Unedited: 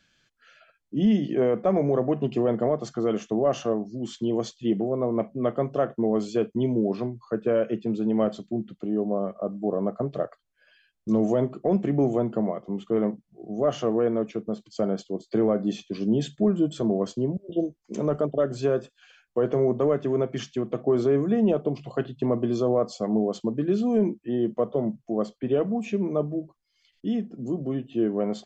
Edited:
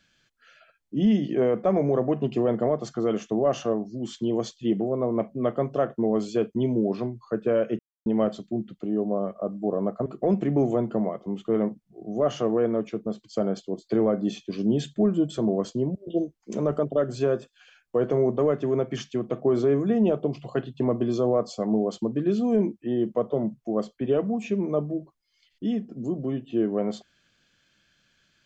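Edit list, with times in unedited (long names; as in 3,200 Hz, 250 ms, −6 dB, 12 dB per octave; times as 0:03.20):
0:07.79–0:08.06: silence
0:10.06–0:11.48: remove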